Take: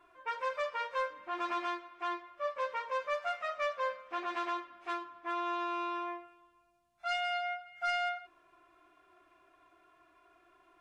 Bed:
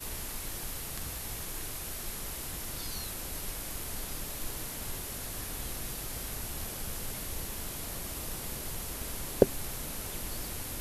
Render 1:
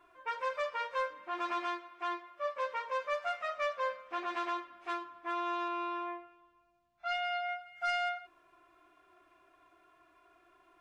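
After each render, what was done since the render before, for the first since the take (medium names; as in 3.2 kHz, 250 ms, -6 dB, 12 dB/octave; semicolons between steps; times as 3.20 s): 1.15–3.12 s: high-pass 150 Hz 6 dB/octave; 5.68–7.49 s: distance through air 110 m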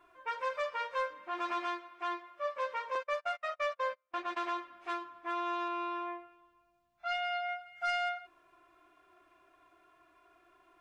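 2.95–4.44 s: gate -41 dBFS, range -32 dB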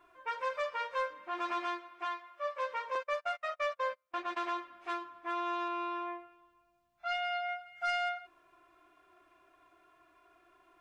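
2.04–2.69 s: high-pass 710 Hz -> 330 Hz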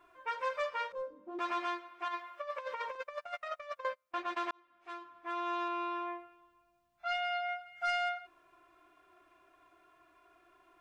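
0.92–1.39 s: FFT filter 130 Hz 0 dB, 270 Hz +10 dB, 2.1 kHz -27 dB, 6.4 kHz -18 dB; 2.08–3.85 s: compressor with a negative ratio -39 dBFS, ratio -0.5; 4.51–5.57 s: fade in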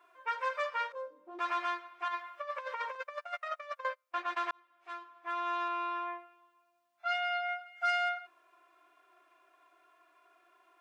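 high-pass 470 Hz 12 dB/octave; dynamic bell 1.5 kHz, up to +4 dB, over -48 dBFS, Q 1.3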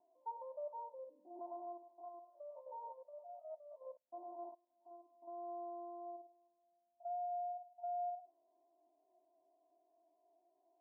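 spectrogram pixelated in time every 50 ms; rippled Chebyshev low-pass 940 Hz, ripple 9 dB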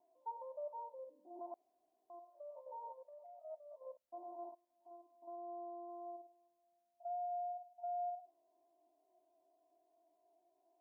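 1.54–2.10 s: room tone; 3.04–3.44 s: compression, threshold -53 dBFS; 5.35–5.88 s: low-pass 1 kHz -> 1.1 kHz 6 dB/octave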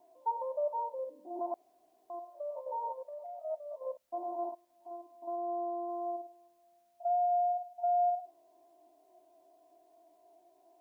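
trim +12 dB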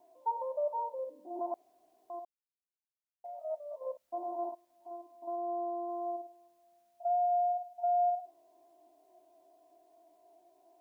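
2.25–3.24 s: mute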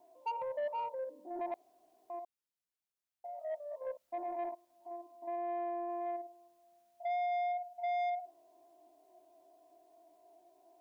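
saturation -31.5 dBFS, distortion -12 dB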